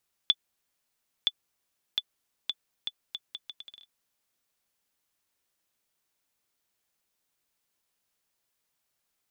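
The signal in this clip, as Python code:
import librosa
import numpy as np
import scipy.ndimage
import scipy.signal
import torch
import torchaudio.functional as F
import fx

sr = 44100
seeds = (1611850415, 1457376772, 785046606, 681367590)

y = fx.bouncing_ball(sr, first_gap_s=0.97, ratio=0.73, hz=3470.0, decay_ms=46.0, level_db=-9.5)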